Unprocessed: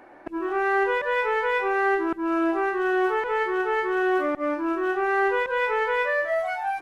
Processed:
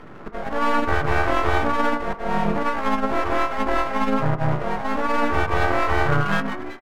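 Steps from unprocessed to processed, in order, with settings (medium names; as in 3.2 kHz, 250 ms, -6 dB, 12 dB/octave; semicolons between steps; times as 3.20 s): fade out at the end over 0.69 s; mistuned SSB -380 Hz 330–2900 Hz; in parallel at +2 dB: compression 16:1, threshold -35 dBFS, peak gain reduction 17 dB; on the sum: formant-preserving pitch shift -5.5 st; high-pass 72 Hz 12 dB/octave; half-wave rectifier; on a send at -10 dB: reverberation RT60 0.60 s, pre-delay 3 ms; on the sum: harmony voices -4 st -4 dB; trim +5.5 dB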